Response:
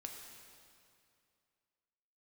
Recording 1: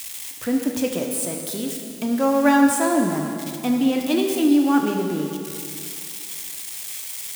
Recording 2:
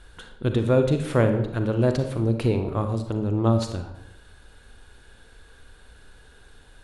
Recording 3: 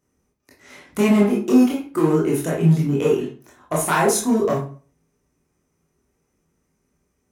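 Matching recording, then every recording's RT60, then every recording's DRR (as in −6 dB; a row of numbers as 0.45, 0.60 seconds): 1; 2.4, 0.90, 0.40 seconds; 1.5, 6.5, −4.5 decibels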